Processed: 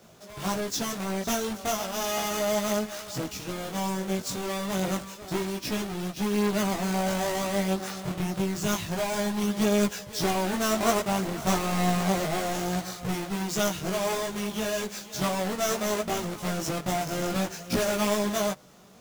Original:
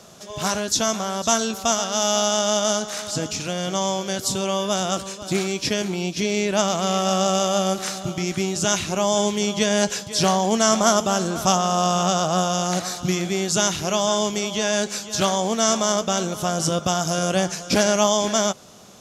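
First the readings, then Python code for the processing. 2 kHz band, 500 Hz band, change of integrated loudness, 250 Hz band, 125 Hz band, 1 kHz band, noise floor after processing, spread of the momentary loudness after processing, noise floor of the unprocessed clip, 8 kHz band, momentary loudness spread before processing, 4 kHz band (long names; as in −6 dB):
−5.0 dB, −7.0 dB, −7.0 dB, −4.0 dB, −4.5 dB, −7.5 dB, −44 dBFS, 6 LU, −37 dBFS, −11.0 dB, 7 LU, −10.0 dB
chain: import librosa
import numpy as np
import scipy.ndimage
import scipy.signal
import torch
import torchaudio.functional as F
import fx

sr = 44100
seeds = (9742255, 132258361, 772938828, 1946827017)

y = fx.halfwave_hold(x, sr)
y = fx.chorus_voices(y, sr, voices=2, hz=0.31, base_ms=18, depth_ms=3.6, mix_pct=50)
y = F.gain(torch.from_numpy(y), -9.0).numpy()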